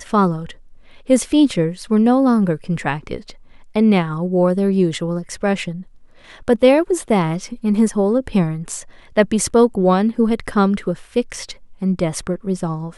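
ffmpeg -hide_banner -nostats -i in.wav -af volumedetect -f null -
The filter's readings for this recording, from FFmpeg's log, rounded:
mean_volume: -18.0 dB
max_volume: -1.4 dB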